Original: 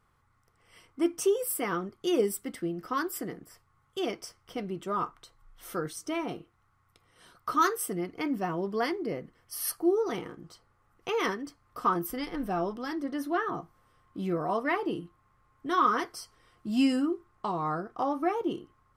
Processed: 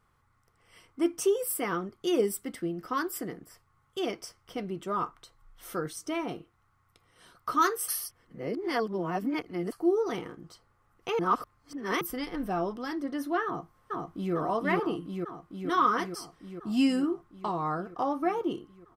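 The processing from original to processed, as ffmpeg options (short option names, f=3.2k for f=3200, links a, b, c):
-filter_complex "[0:a]asplit=2[a][b];[b]afade=t=in:st=13.45:d=0.01,afade=t=out:st=14.34:d=0.01,aecho=0:1:450|900|1350|1800|2250|2700|3150|3600|4050|4500|4950|5400:0.891251|0.668438|0.501329|0.375996|0.281997|0.211498|0.158624|0.118968|0.0892257|0.0669193|0.0501895|0.0376421[c];[a][c]amix=inputs=2:normalize=0,asplit=5[d][e][f][g][h];[d]atrim=end=7.882[i];[e]atrim=start=7.878:end=9.722,asetpts=PTS-STARTPTS,areverse[j];[f]atrim=start=9.718:end=11.192[k];[g]atrim=start=11.188:end=12.012,asetpts=PTS-STARTPTS,areverse[l];[h]atrim=start=12.008[m];[i][j]acrossfade=d=0.004:c1=hsin:c2=hsin[n];[n][k]acrossfade=d=0.004:c1=hsin:c2=hsin[o];[o][l]acrossfade=d=0.004:c1=hsin:c2=hsin[p];[p][m]acrossfade=d=0.004:c1=hsin:c2=hsin"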